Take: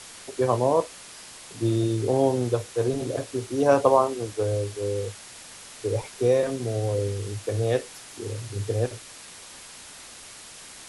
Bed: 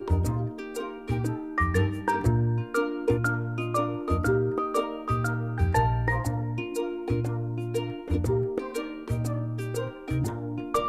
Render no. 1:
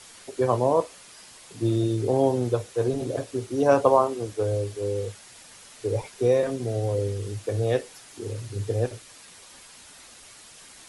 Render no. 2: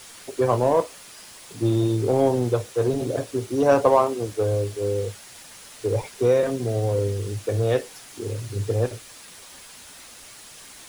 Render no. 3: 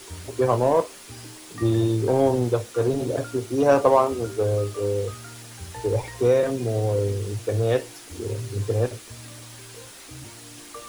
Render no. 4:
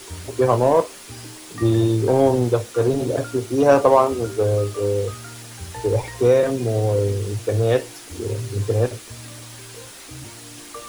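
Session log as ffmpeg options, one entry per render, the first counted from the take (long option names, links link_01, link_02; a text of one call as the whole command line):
ffmpeg -i in.wav -af "afftdn=noise_reduction=6:noise_floor=-45" out.wav
ffmpeg -i in.wav -filter_complex "[0:a]asplit=2[link_01][link_02];[link_02]asoftclip=type=hard:threshold=-22dB,volume=-7dB[link_03];[link_01][link_03]amix=inputs=2:normalize=0,acrusher=bits=7:mix=0:aa=0.000001" out.wav
ffmpeg -i in.wav -i bed.wav -filter_complex "[1:a]volume=-15dB[link_01];[0:a][link_01]amix=inputs=2:normalize=0" out.wav
ffmpeg -i in.wav -af "volume=3.5dB,alimiter=limit=-2dB:level=0:latency=1" out.wav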